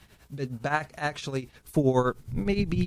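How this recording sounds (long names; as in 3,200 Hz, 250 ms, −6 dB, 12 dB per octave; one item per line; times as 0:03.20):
tremolo triangle 9.7 Hz, depth 80%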